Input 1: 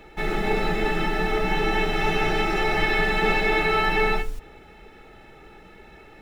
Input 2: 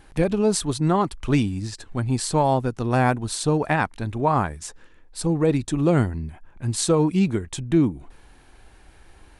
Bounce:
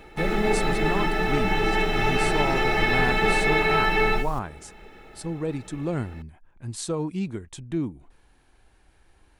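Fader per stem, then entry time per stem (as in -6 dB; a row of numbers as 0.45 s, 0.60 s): 0.0 dB, -9.0 dB; 0.00 s, 0.00 s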